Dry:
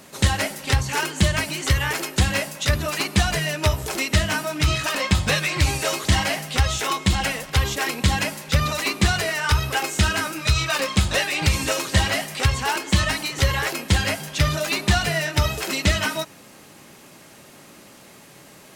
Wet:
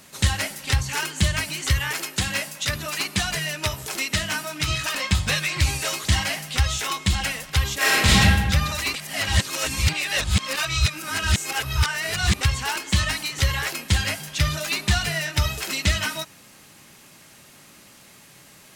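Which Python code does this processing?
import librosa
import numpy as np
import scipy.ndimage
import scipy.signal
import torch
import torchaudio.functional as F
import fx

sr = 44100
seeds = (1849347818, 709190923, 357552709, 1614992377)

y = fx.peak_eq(x, sr, hz=66.0, db=-12.5, octaves=1.1, at=(1.79, 4.69))
y = fx.reverb_throw(y, sr, start_s=7.77, length_s=0.43, rt60_s=1.4, drr_db=-10.0)
y = fx.edit(y, sr, fx.reverse_span(start_s=8.94, length_s=3.47), tone=tone)
y = fx.peak_eq(y, sr, hz=440.0, db=-8.0, octaves=2.7)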